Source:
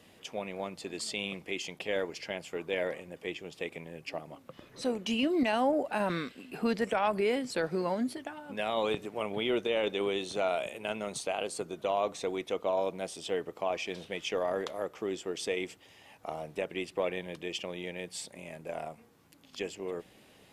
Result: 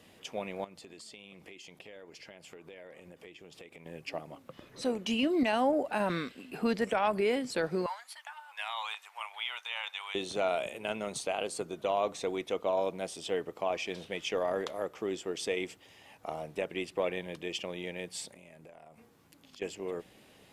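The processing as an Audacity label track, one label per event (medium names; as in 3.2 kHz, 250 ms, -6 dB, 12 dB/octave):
0.640000	3.860000	compression, threshold -47 dBFS
7.860000	10.150000	elliptic high-pass 870 Hz, stop band 80 dB
18.320000	19.620000	compression 12:1, threshold -49 dBFS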